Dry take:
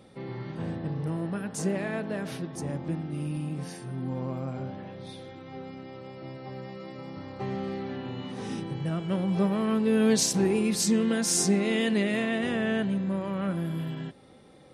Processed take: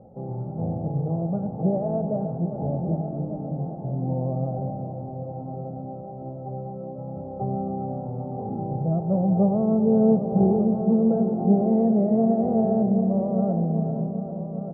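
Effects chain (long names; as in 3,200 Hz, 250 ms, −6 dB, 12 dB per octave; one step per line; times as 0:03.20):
elliptic low-pass filter 830 Hz, stop band 70 dB
mains-hum notches 50/100/150 Hz
comb filter 1.5 ms, depth 54%
on a send: echo machine with several playback heads 396 ms, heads all three, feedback 42%, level −12.5 dB
on the sum: level +6 dB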